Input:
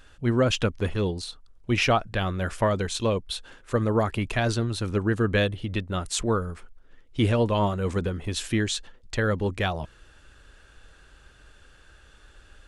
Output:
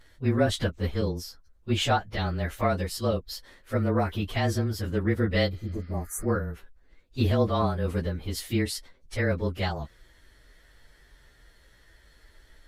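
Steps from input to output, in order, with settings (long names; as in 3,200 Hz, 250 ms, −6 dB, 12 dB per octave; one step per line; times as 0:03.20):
partials spread apart or drawn together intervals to 108%
healed spectral selection 0:05.55–0:06.23, 1,200–5,800 Hz both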